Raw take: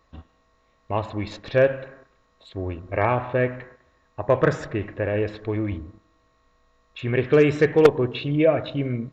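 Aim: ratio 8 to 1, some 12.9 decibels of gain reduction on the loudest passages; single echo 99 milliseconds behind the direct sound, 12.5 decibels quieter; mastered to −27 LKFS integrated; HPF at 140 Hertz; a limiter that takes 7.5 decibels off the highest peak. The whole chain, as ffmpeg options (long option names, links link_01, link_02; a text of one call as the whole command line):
ffmpeg -i in.wav -af "highpass=140,acompressor=threshold=-22dB:ratio=8,alimiter=limit=-18.5dB:level=0:latency=1,aecho=1:1:99:0.237,volume=4dB" out.wav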